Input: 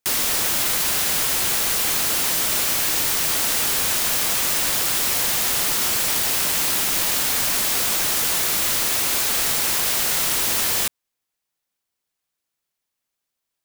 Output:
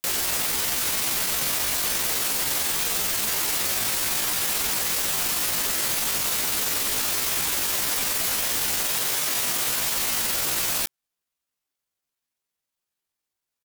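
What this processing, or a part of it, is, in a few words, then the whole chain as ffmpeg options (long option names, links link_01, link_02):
chipmunk voice: -filter_complex "[0:a]asetrate=64194,aresample=44100,atempo=0.686977,asettb=1/sr,asplit=3[link_01][link_02][link_03];[link_01]atrim=end=8.934[link_04];[link_02]atrim=start=8.93:end=9.64,asetpts=PTS-STARTPTS,afade=type=in:duration=0.004:curve=qsin,afade=type=out:start_time=0.706:duration=0.004:curve=qsin,highpass=91[link_05];[link_03]atrim=start=9.636[link_06];[link_04][link_05]acrossfade=duration=0.004:curve1=hsin:curve2=qsin[link_07];[link_07][link_06]acrossfade=duration=0.004:curve1=qsin:curve2=hsin,volume=-1.5dB"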